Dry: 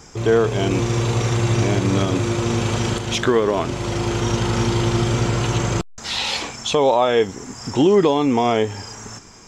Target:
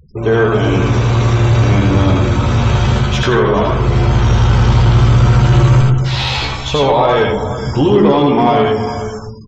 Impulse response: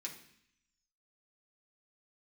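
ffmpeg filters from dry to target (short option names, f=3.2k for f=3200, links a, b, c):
-filter_complex "[0:a]aecho=1:1:417:0.211,asplit=2[a][b];[1:a]atrim=start_sample=2205,asetrate=26901,aresample=44100,adelay=81[c];[b][c]afir=irnorm=-1:irlink=0,volume=-1dB[d];[a][d]amix=inputs=2:normalize=0,afftfilt=real='re*gte(hypot(re,im),0.0282)':imag='im*gte(hypot(re,im),0.0282)':win_size=1024:overlap=0.75,asubboost=boost=6:cutoff=100,asplit=2[e][f];[f]adelay=14,volume=-6dB[g];[e][g]amix=inputs=2:normalize=0,acontrast=59,lowpass=f=2.3k:p=1,volume=-1dB"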